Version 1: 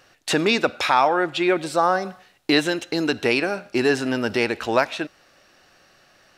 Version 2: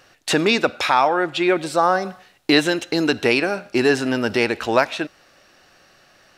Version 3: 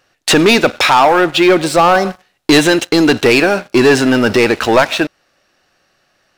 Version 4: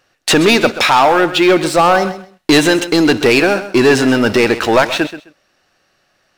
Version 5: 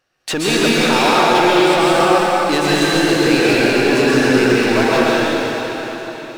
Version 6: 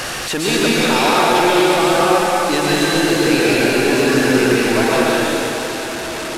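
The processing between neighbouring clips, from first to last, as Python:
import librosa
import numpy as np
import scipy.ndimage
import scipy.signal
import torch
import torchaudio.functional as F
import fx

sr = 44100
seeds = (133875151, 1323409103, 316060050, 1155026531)

y1 = fx.rider(x, sr, range_db=10, speed_s=2.0)
y1 = F.gain(torch.from_numpy(y1), 1.5).numpy()
y2 = fx.leveller(y1, sr, passes=3)
y3 = fx.echo_feedback(y2, sr, ms=130, feedback_pct=19, wet_db=-13.5)
y3 = F.gain(torch.from_numpy(y3), -1.0).numpy()
y4 = fx.rev_plate(y3, sr, seeds[0], rt60_s=4.3, hf_ratio=0.95, predelay_ms=110, drr_db=-8.0)
y4 = F.gain(torch.from_numpy(y4), -10.0).numpy()
y5 = fx.delta_mod(y4, sr, bps=64000, step_db=-17.5)
y5 = F.gain(torch.from_numpy(y5), -1.0).numpy()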